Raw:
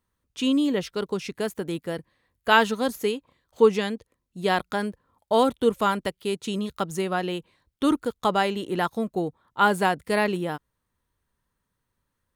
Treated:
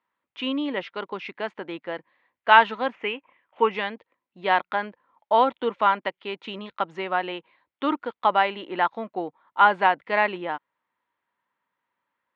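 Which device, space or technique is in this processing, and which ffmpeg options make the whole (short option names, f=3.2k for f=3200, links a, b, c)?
phone earpiece: -filter_complex "[0:a]highpass=400,equalizer=f=430:t=q:w=4:g=-7,equalizer=f=920:t=q:w=4:g=5,equalizer=f=2.1k:t=q:w=4:g=4,lowpass=f=3.1k:w=0.5412,lowpass=f=3.1k:w=1.3066,asettb=1/sr,asplit=3[a][b][c];[a]atrim=end=2.864[d];[b]atrim=start=2.86:end=3.71,asetpts=PTS-STARTPTS,afade=t=in:d=0.004:c=qsin,afade=t=out:st=0.846:d=0.004:c=qsin,highshelf=f=3.4k:t=q:w=3:g=-7.5[e];[c]atrim=start=3.706[f];[d][e]acrossfade=d=0.004:c1=hsin:c2=qsin[g];[g][f]acrossfade=d=0.004:c1=qsin:c2=hsin,volume=2dB"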